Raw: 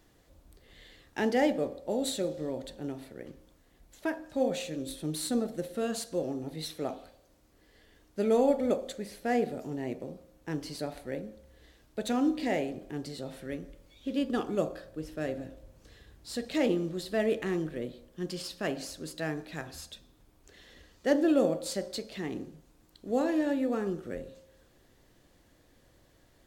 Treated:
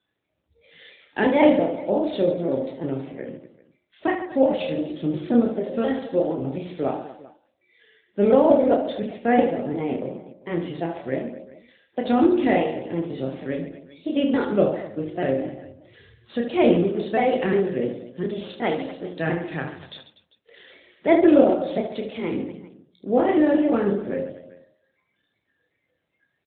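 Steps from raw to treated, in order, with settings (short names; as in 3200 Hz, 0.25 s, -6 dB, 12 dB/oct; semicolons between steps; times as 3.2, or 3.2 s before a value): trilling pitch shifter +2.5 st, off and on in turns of 0.177 s; HPF 61 Hz 12 dB/oct; spectral noise reduction 23 dB; on a send: reverse bouncing-ball echo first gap 30 ms, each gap 1.5×, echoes 5; on the sum: gain +8.5 dB; AMR-NB 12.2 kbps 8000 Hz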